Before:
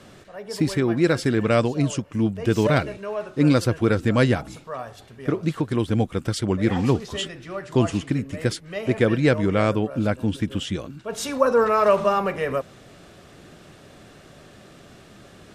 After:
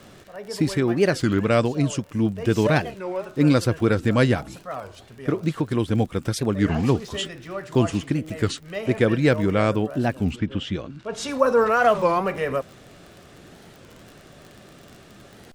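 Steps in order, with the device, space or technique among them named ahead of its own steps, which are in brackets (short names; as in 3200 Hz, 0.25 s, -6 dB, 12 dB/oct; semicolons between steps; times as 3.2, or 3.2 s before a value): warped LP (record warp 33 1/3 rpm, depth 250 cents; crackle 38/s -34 dBFS; pink noise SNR 45 dB); 10.35–11.27 LPF 2900 Hz -> 7400 Hz 12 dB/oct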